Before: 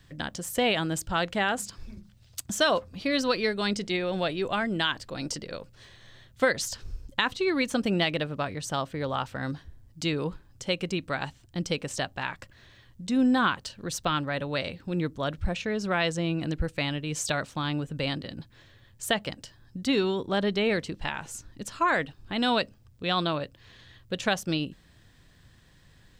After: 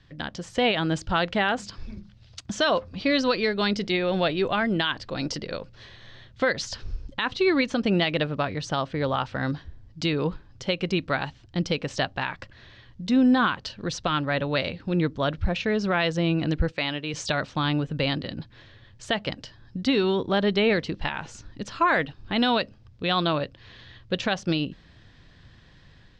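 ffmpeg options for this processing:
ffmpeg -i in.wav -filter_complex "[0:a]asettb=1/sr,asplit=3[link_01][link_02][link_03];[link_01]atrim=end=16.724[link_04];[link_02]atrim=start=16.72:end=17.14,asetpts=PTS-STARTPTS,afade=type=in:duration=0.004:curve=qsin,afade=type=out:start_time=0.416:duration=0.004:curve=qsin,highpass=frequency=370:poles=1[link_05];[link_03]atrim=start=17.136[link_06];[link_04][link_05]acrossfade=duration=0.004:curve1=hsin:curve2=qsin[link_07];[link_07][link_06]acrossfade=duration=0.004:curve1=qsin:curve2=hsin,alimiter=limit=-17.5dB:level=0:latency=1:release=171,dynaudnorm=framelen=170:gausssize=5:maxgain=5dB,lowpass=frequency=5300:width=0.5412,lowpass=frequency=5300:width=1.3066" out.wav

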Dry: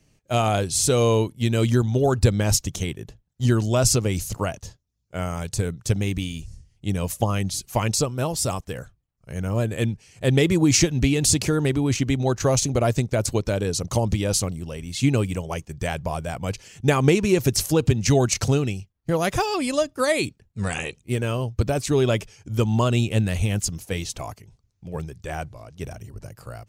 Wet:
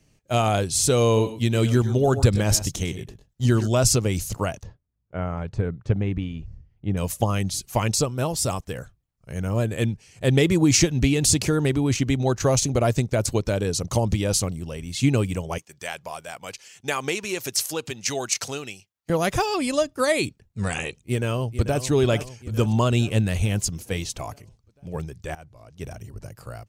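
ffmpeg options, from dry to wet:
ffmpeg -i in.wav -filter_complex "[0:a]asplit=3[link_01][link_02][link_03];[link_01]afade=type=out:start_time=1.15:duration=0.02[link_04];[link_02]aecho=1:1:102|124:0.178|0.188,afade=type=in:start_time=1.15:duration=0.02,afade=type=out:start_time=3.66:duration=0.02[link_05];[link_03]afade=type=in:start_time=3.66:duration=0.02[link_06];[link_04][link_05][link_06]amix=inputs=3:normalize=0,asettb=1/sr,asplit=3[link_07][link_08][link_09];[link_07]atrim=end=4.634[link_10];[link_08]atrim=start=4.63:end=6.97,asetpts=PTS-STARTPTS,afade=type=in:duration=0.004:curve=qsin,afade=type=out:start_time=2.336:duration=0.004:curve=qsin,lowpass=1700[link_11];[link_09]atrim=start=6.966[link_12];[link_10][link_11]acrossfade=duration=0.004:curve1=hsin:curve2=qsin[link_13];[link_13][link_12]acrossfade=duration=0.004:curve1=qsin:curve2=hsin,asettb=1/sr,asplit=3[link_14][link_15][link_16];[link_14]atrim=end=15.584[link_17];[link_15]atrim=start=15.58:end=19.1,asetpts=PTS-STARTPTS,afade=type=in:duration=0.004:curve=qsin,afade=type=out:start_time=3.516:duration=0.004:curve=qsin,highpass=frequency=1200:poles=1[link_18];[link_16]atrim=start=19.096[link_19];[link_17][link_18]acrossfade=duration=0.004:curve1=hsin:curve2=qsin[link_20];[link_20][link_19]acrossfade=duration=0.004:curve1=qsin:curve2=hsin,asplit=2[link_21][link_22];[link_22]afade=type=in:start_time=20.98:duration=0.01,afade=type=out:start_time=21.84:duration=0.01,aecho=0:1:440|880|1320|1760|2200|2640|3080:0.281838|0.169103|0.101462|0.0608771|0.0365262|0.0219157|0.0131494[link_23];[link_21][link_23]amix=inputs=2:normalize=0,asplit=2[link_24][link_25];[link_24]atrim=end=25.35,asetpts=PTS-STARTPTS,afade=type=out:start_time=25.346:duration=0.004:curve=hsin:silence=0.112202[link_26];[link_25]atrim=start=25.35,asetpts=PTS-STARTPTS,afade=type=in:duration=0.63:silence=0.112202[link_27];[link_26][link_27]concat=n=2:v=0:a=1" out.wav

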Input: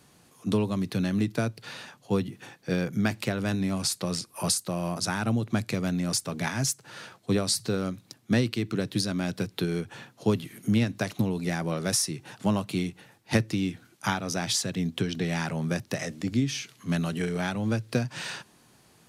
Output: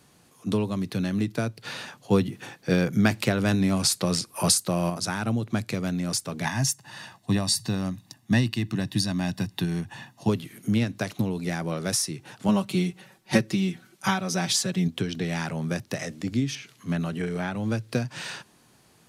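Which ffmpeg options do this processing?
ffmpeg -i in.wav -filter_complex "[0:a]asettb=1/sr,asplit=3[link_01][link_02][link_03];[link_01]atrim=end=6.454[link_04];[link_02]atrim=start=6.45:end=10.29,asetpts=PTS-STARTPTS,afade=type=in:duration=0.004:curve=qsin,afade=type=out:start_time=3.836:duration=0.004:curve=qsin,aecho=1:1:1.1:0.7,atrim=end_sample=169344[link_05];[link_03]atrim=start=10.286[link_06];[link_04][link_05]acrossfade=duration=0.004:curve1=hsin:curve2=qsin[link_07];[link_07][link_06]acrossfade=duration=0.004:curve1=qsin:curve2=hsin,asettb=1/sr,asplit=3[link_08][link_09][link_10];[link_08]atrim=end=12.484[link_11];[link_09]atrim=start=12.48:end=14.88,asetpts=PTS-STARTPTS,afade=type=in:duration=0.004:curve=qsin,afade=type=out:start_time=2.396:duration=0.004:curve=qsin,aecho=1:1:5.3:0.93,atrim=end_sample=105840[link_12];[link_10]atrim=start=14.876[link_13];[link_11][link_12]acrossfade=duration=0.004:curve1=hsin:curve2=qsin[link_14];[link_14][link_13]acrossfade=duration=0.004:curve1=qsin:curve2=hsin,asettb=1/sr,asplit=3[link_15][link_16][link_17];[link_15]atrim=end=16.554[link_18];[link_16]atrim=start=16.55:end=17.55,asetpts=PTS-STARTPTS,afade=type=in:duration=0.004:curve=qsin,afade=type=out:start_time=0.996:duration=0.004:curve=qsin,acrossover=split=2700[link_19][link_20];[link_20]acompressor=threshold=-47dB:ratio=4:attack=1:release=60[link_21];[link_19][link_21]amix=inputs=2:normalize=0[link_22];[link_17]atrim=start=17.546[link_23];[link_18][link_22]acrossfade=duration=0.004:curve1=hsin:curve2=qsin[link_24];[link_24][link_23]acrossfade=duration=0.004:curve1=qsin:curve2=hsin,asplit=3[link_25][link_26][link_27];[link_25]atrim=end=1.652[link_28];[link_26]atrim=start=1.648:end=4.902,asetpts=PTS-STARTPTS,volume=5dB[link_29];[link_27]atrim=start=4.898[link_30];[link_28][link_29]acrossfade=duration=0.004:curve1=hsin:curve2=hsin[link_31];[link_31][link_30]acrossfade=duration=0.004:curve1=hsin:curve2=hsin" out.wav

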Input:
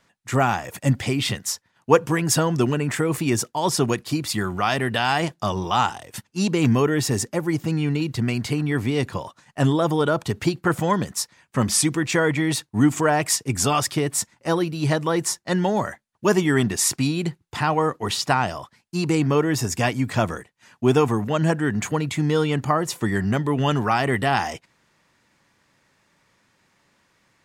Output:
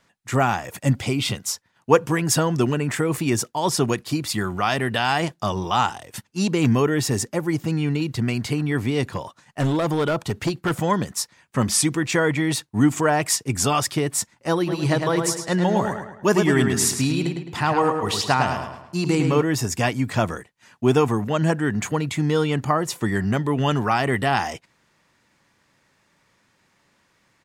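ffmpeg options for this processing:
ffmpeg -i in.wav -filter_complex "[0:a]asettb=1/sr,asplit=3[link_01][link_02][link_03];[link_01]atrim=end=0.964[link_04];[link_02]atrim=start=0.96:end=1.53,asetpts=PTS-STARTPTS,afade=type=in:duration=0.004:curve=qsin,afade=type=out:start_time=0.566:duration=0.004:curve=qsin,bandreject=frequency=1800:width=5.6[link_05];[link_03]atrim=start=1.526[link_06];[link_04][link_05]acrossfade=duration=0.004:curve1=hsin:curve2=qsin[link_07];[link_07][link_06]acrossfade=duration=0.004:curve1=qsin:curve2=hsin,asettb=1/sr,asplit=3[link_08][link_09][link_10];[link_08]atrim=end=9.134[link_11];[link_09]atrim=start=9.13:end=10.82,asetpts=PTS-STARTPTS,afade=type=in:duration=0.004:curve=qsin,afade=type=out:start_time=1.686:duration=0.004:curve=qsin,asoftclip=type=hard:threshold=-17dB[link_12];[link_10]atrim=start=10.816[link_13];[link_11][link_12]acrossfade=duration=0.004:curve1=hsin:curve2=qsin[link_14];[link_14][link_13]acrossfade=duration=0.004:curve1=qsin:curve2=hsin,asplit=3[link_15][link_16][link_17];[link_15]afade=type=out:start_time=14.66:duration=0.02[link_18];[link_16]asplit=2[link_19][link_20];[link_20]adelay=106,lowpass=frequency=4900:poles=1,volume=-5dB,asplit=2[link_21][link_22];[link_22]adelay=106,lowpass=frequency=4900:poles=1,volume=0.44,asplit=2[link_23][link_24];[link_24]adelay=106,lowpass=frequency=4900:poles=1,volume=0.44,asplit=2[link_25][link_26];[link_26]adelay=106,lowpass=frequency=4900:poles=1,volume=0.44,asplit=2[link_27][link_28];[link_28]adelay=106,lowpass=frequency=4900:poles=1,volume=0.44[link_29];[link_19][link_21][link_23][link_25][link_27][link_29]amix=inputs=6:normalize=0,afade=type=in:start_time=14.66:duration=0.02,afade=type=out:start_time=19.41:duration=0.02[link_30];[link_17]afade=type=in:start_time=19.41:duration=0.02[link_31];[link_18][link_30][link_31]amix=inputs=3:normalize=0" out.wav

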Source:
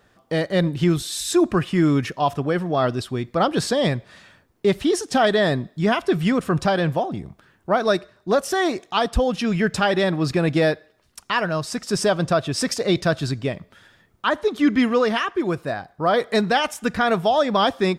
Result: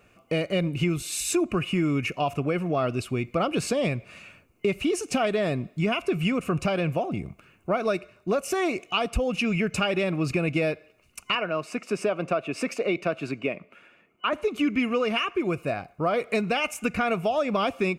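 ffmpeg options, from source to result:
ffmpeg -i in.wav -filter_complex "[0:a]asettb=1/sr,asplit=3[link_01][link_02][link_03];[link_01]atrim=end=11.354[link_04];[link_02]atrim=start=11.35:end=14.33,asetpts=PTS-STARTPTS,afade=type=in:duration=0.004:curve=qsin,afade=type=out:start_time=2.976:duration=0.004:curve=qsin,acrossover=split=200 3100:gain=0.0794 1 0.224[link_05][link_06][link_07];[link_05][link_06][link_07]amix=inputs=3:normalize=0[link_08];[link_03]atrim=start=14.326[link_09];[link_04][link_08]acrossfade=duration=0.004:curve1=hsin:curve2=qsin[link_10];[link_10][link_09]acrossfade=duration=0.004:curve1=qsin:curve2=hsin,superequalizer=9b=0.562:11b=0.501:12b=2.82:13b=0.447:14b=0.562,acompressor=threshold=-23dB:ratio=3" out.wav

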